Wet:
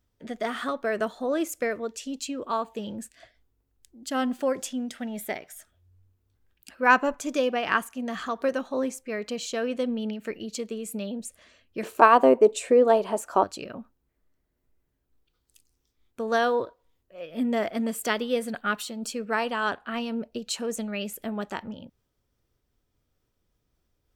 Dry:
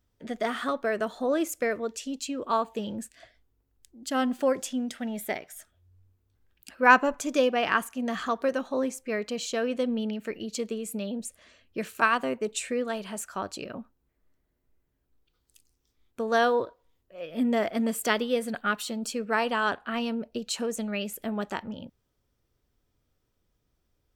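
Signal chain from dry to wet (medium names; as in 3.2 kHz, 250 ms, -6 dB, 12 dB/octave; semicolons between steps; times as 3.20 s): 11.83–13.44 s: high-order bell 540 Hz +13.5 dB 2.3 oct; random flutter of the level, depth 50%; trim +2 dB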